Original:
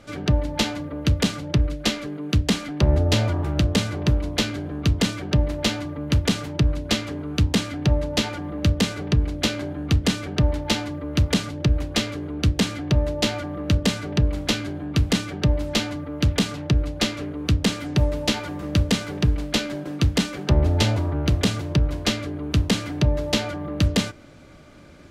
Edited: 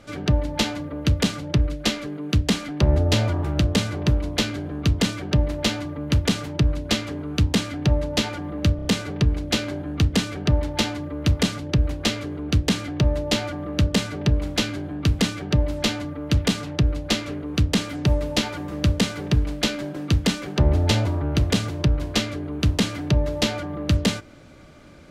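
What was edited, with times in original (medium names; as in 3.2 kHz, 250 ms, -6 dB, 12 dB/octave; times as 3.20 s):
8.76 s: stutter 0.03 s, 4 plays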